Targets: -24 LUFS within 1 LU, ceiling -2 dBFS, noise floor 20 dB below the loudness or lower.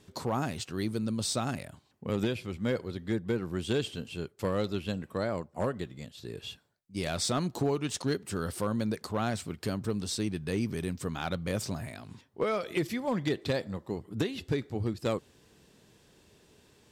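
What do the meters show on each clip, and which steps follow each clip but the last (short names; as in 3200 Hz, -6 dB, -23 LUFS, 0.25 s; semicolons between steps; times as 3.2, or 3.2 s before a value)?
clipped 0.2%; flat tops at -21.0 dBFS; loudness -33.0 LUFS; peak -21.0 dBFS; loudness target -24.0 LUFS
-> clip repair -21 dBFS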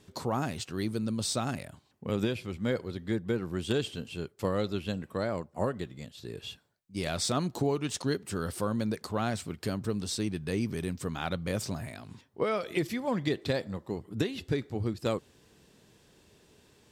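clipped 0.0%; loudness -33.0 LUFS; peak -14.0 dBFS; loudness target -24.0 LUFS
-> gain +9 dB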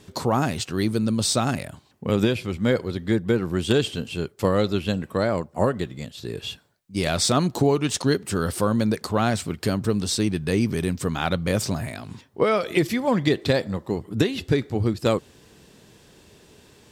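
loudness -24.0 LUFS; peak -5.0 dBFS; noise floor -54 dBFS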